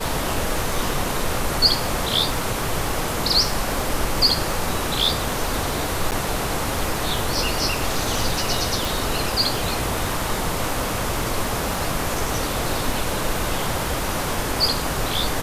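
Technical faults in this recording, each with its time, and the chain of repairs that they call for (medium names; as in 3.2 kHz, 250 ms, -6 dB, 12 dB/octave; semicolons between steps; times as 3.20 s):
crackle 36 per s -28 dBFS
6.11–6.12 s: dropout 8.7 ms
8.85 s: pop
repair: de-click; interpolate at 6.11 s, 8.7 ms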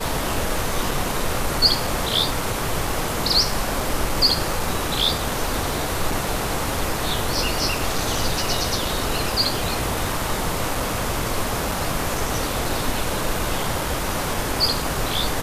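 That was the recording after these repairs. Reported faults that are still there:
nothing left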